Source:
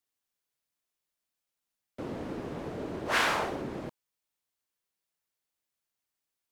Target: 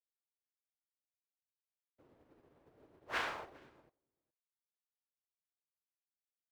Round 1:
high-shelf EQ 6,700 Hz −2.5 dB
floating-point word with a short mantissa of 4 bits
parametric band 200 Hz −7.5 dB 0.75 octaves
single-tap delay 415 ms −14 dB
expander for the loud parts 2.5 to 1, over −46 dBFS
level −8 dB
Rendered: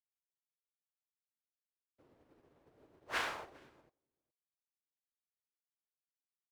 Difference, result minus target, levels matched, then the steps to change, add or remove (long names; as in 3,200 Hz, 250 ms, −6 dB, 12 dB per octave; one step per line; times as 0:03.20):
8,000 Hz band +4.5 dB
change: high-shelf EQ 6,700 Hz −13 dB